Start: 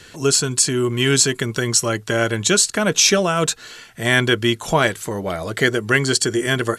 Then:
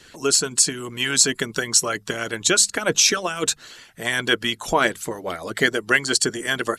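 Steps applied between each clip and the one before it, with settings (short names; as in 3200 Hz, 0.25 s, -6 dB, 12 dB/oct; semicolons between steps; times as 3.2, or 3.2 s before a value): notches 50/100/150/200 Hz; harmonic-percussive split harmonic -15 dB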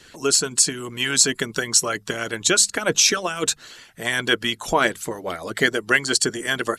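nothing audible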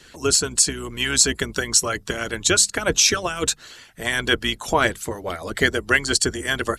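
octaver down 2 oct, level -4 dB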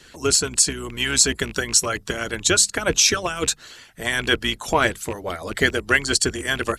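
rattling part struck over -30 dBFS, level -24 dBFS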